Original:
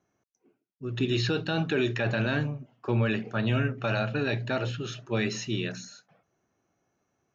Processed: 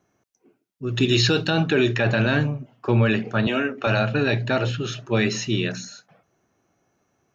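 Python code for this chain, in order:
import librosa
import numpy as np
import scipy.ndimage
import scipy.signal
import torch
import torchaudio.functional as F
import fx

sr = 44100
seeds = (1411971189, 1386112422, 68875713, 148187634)

y = fx.high_shelf(x, sr, hz=4800.0, db=11.0, at=(0.87, 1.5))
y = fx.highpass(y, sr, hz=240.0, slope=24, at=(3.47, 3.87))
y = y * 10.0 ** (7.0 / 20.0)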